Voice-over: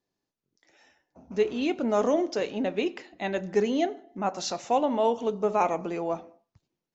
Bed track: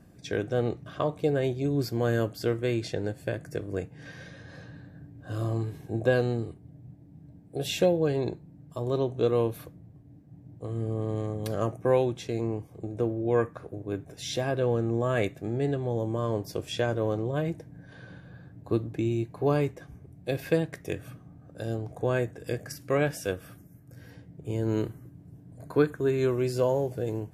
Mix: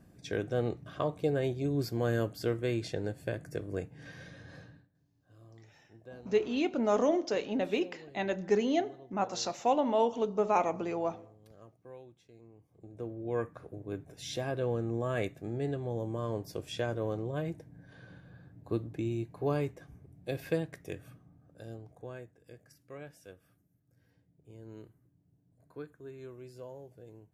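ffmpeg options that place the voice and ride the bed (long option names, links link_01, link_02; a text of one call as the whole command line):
ffmpeg -i stem1.wav -i stem2.wav -filter_complex "[0:a]adelay=4950,volume=-3dB[link_01];[1:a]volume=16.5dB,afade=type=out:start_time=4.56:duration=0.32:silence=0.0749894,afade=type=in:start_time=12.54:duration=1.13:silence=0.0944061,afade=type=out:start_time=20.47:duration=1.84:silence=0.177828[link_02];[link_01][link_02]amix=inputs=2:normalize=0" out.wav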